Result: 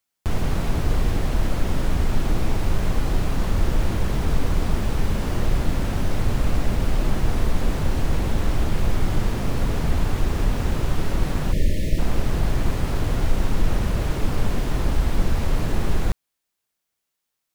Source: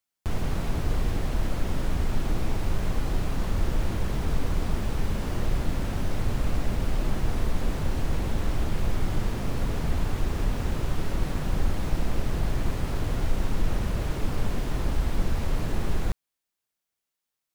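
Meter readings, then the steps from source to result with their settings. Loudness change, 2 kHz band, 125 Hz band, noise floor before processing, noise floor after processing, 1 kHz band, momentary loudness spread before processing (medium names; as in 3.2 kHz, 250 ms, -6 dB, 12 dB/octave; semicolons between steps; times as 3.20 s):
+5.0 dB, +5.0 dB, +5.0 dB, -85 dBFS, -80 dBFS, +5.0 dB, 2 LU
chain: time-frequency box 11.52–11.99 s, 660–1700 Hz -28 dB; trim +5 dB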